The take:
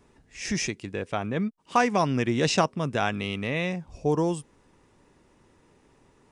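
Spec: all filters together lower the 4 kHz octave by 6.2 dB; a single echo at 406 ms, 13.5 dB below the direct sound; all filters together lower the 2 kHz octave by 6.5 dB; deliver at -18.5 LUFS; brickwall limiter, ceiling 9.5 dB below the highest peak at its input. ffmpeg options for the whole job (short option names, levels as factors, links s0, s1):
-af "equalizer=f=2000:t=o:g=-7,equalizer=f=4000:t=o:g=-6.5,alimiter=limit=0.126:level=0:latency=1,aecho=1:1:406:0.211,volume=3.76"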